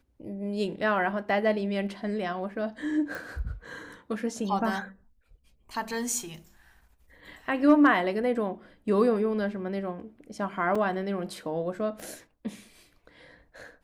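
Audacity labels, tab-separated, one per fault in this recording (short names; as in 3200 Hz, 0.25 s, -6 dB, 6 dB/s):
3.150000	3.150000	pop
10.750000	10.750000	gap 4.5 ms
12.000000	12.000000	pop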